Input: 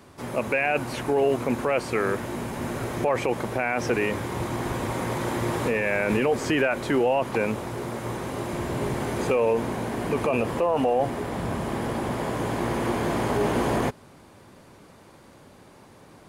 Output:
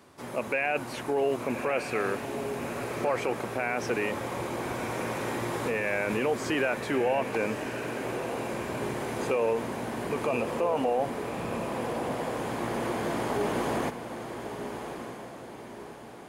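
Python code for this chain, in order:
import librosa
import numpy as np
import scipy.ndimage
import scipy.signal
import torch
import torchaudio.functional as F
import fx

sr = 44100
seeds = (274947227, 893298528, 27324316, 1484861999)

y = fx.low_shelf(x, sr, hz=120.0, db=-11.0)
y = fx.echo_diffused(y, sr, ms=1190, feedback_pct=46, wet_db=-8)
y = y * 10.0 ** (-4.0 / 20.0)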